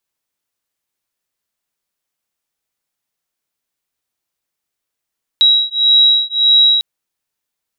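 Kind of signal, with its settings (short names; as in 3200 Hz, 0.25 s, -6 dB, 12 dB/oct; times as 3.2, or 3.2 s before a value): beating tones 3860 Hz, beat 1.7 Hz, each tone -11.5 dBFS 1.40 s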